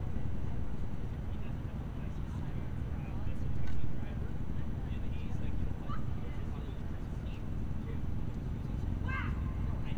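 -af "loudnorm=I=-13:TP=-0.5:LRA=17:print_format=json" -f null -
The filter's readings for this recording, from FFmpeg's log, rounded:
"input_i" : "-39.3",
"input_tp" : "-19.2",
"input_lra" : "1.7",
"input_thresh" : "-49.3",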